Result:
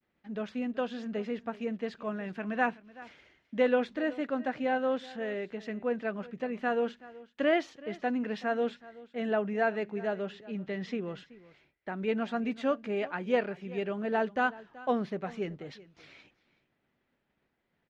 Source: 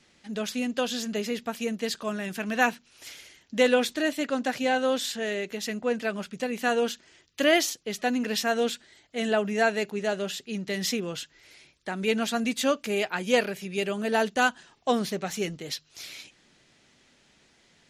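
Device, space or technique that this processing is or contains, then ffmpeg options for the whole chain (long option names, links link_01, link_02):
hearing-loss simulation: -filter_complex "[0:a]asettb=1/sr,asplit=3[link_01][link_02][link_03];[link_01]atrim=end=10.334[link_04];[link_02]atrim=start=10.33:end=10.98,asetpts=PTS-STARTPTS,afade=type=in:duration=0.004:curve=qsin,afade=type=out:start_time=0.646:duration=0.004:curve=qsin,lowpass=6200[link_05];[link_03]atrim=start=10.976[link_06];[link_04][link_05]acrossfade=duration=0.004:curve1=hsin:curve2=qsin[link_07];[link_07][link_06]acrossfade=duration=0.004:curve1=qsin:curve2=hsin,lowpass=1800,agate=range=-33dB:threshold=-57dB:ratio=3:detection=peak,aecho=1:1:378:0.106,volume=-4dB"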